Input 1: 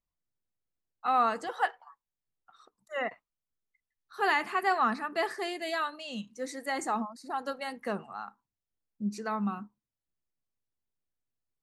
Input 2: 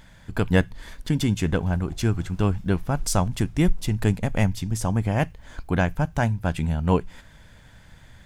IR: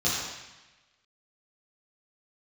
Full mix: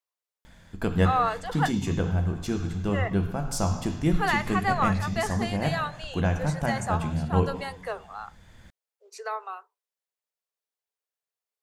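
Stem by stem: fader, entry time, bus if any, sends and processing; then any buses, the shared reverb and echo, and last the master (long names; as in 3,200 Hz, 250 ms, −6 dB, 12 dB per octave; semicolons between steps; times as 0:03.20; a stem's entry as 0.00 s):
+1.5 dB, 0.00 s, no send, Butterworth high-pass 400 Hz 96 dB per octave
+1.0 dB, 0.45 s, send −22.5 dB, automatic ducking −7 dB, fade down 1.15 s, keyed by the first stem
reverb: on, RT60 1.1 s, pre-delay 3 ms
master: no processing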